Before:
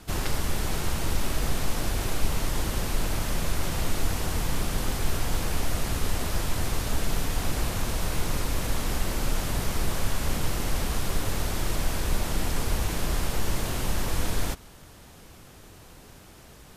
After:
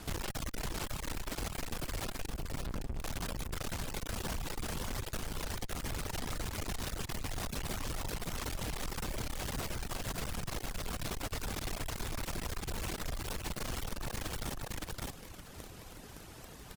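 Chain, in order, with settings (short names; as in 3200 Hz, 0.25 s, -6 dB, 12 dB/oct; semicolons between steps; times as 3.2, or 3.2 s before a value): tracing distortion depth 0.054 ms; in parallel at -10.5 dB: companded quantiser 2-bit; 2.26–2.99 on the sum: tilt -3.5 dB/oct; tube stage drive 32 dB, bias 0.5; reverb removal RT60 1.3 s; on a send: feedback echo 0.564 s, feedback 16%, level -4.5 dB; on the sum: compressor, threshold -37 dBFS, peak gain reduction 7.5 dB; gain +3 dB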